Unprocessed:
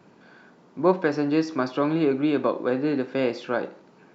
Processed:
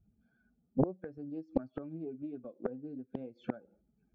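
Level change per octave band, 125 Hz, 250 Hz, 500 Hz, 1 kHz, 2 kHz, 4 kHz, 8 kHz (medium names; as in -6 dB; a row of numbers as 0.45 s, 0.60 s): -8.5 dB, -13.5 dB, -16.5 dB, -19.0 dB, -26.5 dB, under -25 dB, no reading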